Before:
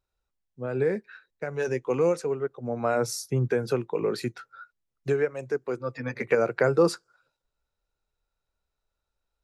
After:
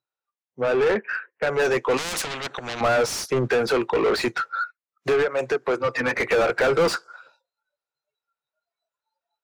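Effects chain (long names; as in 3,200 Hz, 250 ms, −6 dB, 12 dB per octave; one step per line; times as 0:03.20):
0:00.80–0:01.47: elliptic low-pass filter 3,000 Hz, stop band 40 dB
noise reduction from a noise print of the clip's start 25 dB
high-pass filter 46 Hz
low-shelf EQ 300 Hz −10.5 dB
0:05.20–0:05.94: downward compressor 6 to 1, threshold −31 dBFS, peak gain reduction 8.5 dB
mid-hump overdrive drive 31 dB, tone 1,900 Hz, clips at −12 dBFS
0:01.97–0:02.81: every bin compressed towards the loudest bin 4 to 1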